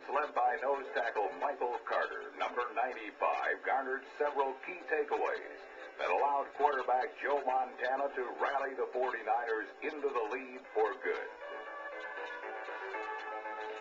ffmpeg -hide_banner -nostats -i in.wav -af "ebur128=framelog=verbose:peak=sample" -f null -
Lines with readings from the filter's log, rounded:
Integrated loudness:
  I:         -35.6 LUFS
  Threshold: -45.7 LUFS
Loudness range:
  LRA:         4.7 LU
  Threshold: -55.5 LUFS
  LRA low:   -38.6 LUFS
  LRA high:  -34.0 LUFS
Sample peak:
  Peak:      -14.2 dBFS